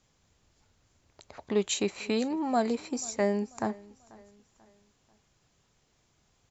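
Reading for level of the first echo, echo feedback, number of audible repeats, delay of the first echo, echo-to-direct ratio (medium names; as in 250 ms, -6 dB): -22.5 dB, 41%, 2, 489 ms, -21.5 dB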